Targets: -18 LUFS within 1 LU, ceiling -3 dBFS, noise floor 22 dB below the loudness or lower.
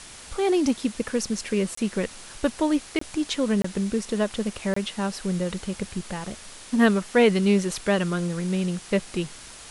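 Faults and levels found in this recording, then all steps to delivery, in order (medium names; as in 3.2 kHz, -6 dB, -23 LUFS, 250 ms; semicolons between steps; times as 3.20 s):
dropouts 4; longest dropout 24 ms; noise floor -44 dBFS; noise floor target -48 dBFS; loudness -25.5 LUFS; peak level -7.5 dBFS; loudness target -18.0 LUFS
-> interpolate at 1.75/2.99/3.62/4.74 s, 24 ms; noise print and reduce 6 dB; trim +7.5 dB; peak limiter -3 dBFS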